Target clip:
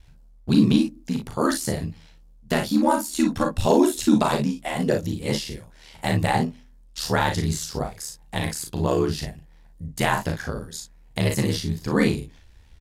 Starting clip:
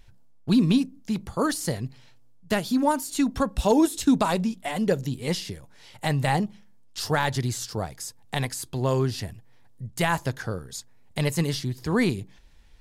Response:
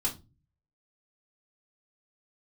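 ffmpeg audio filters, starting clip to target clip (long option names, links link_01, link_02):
-af "aeval=exprs='val(0)*sin(2*PI*38*n/s)':channel_layout=same,aecho=1:1:37|56:0.562|0.355,volume=3.5dB"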